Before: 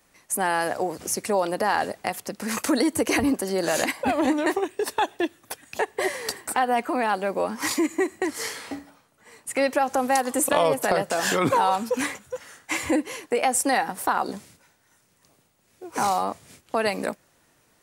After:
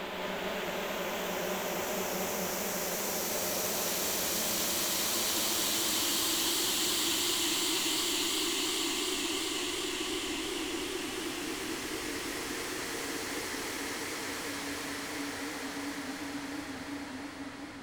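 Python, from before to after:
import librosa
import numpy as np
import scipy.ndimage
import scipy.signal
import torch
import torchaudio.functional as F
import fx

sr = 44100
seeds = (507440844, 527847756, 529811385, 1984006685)

p1 = fx.high_shelf(x, sr, hz=5200.0, db=-9.0)
p2 = fx.over_compress(p1, sr, threshold_db=-32.0, ratio=-1.0)
p3 = p1 + (p2 * 10.0 ** (2.0 / 20.0))
p4 = fx.spec_paint(p3, sr, seeds[0], shape='fall', start_s=7.48, length_s=0.52, low_hz=2700.0, high_hz=7100.0, level_db=-19.0)
p5 = fx.cheby_harmonics(p4, sr, harmonics=(3,), levels_db=(-7,), full_scale_db=-7.0)
p6 = 10.0 ** (-14.5 / 20.0) * (np.abs((p5 / 10.0 ** (-14.5 / 20.0) + 3.0) % 4.0 - 2.0) - 1.0)
p7 = fx.paulstretch(p6, sr, seeds[1], factor=9.8, window_s=1.0, from_s=7.12)
p8 = p7 + 10.0 ** (-5.0 / 20.0) * np.pad(p7, (int(172 * sr / 1000.0), 0))[:len(p7)]
p9 = fx.echo_warbled(p8, sr, ms=220, feedback_pct=77, rate_hz=2.8, cents=154, wet_db=-5)
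y = p9 * 10.0 ** (-4.0 / 20.0)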